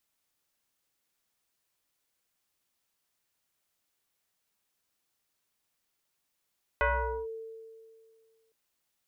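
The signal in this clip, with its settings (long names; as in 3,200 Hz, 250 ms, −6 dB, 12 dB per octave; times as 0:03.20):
two-operator FM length 1.71 s, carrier 448 Hz, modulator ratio 1.14, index 3.1, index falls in 0.46 s linear, decay 2.11 s, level −22 dB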